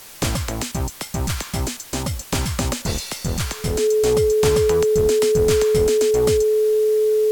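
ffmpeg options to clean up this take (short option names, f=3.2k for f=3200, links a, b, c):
-af "bandreject=f=430:w=30,afwtdn=0.01"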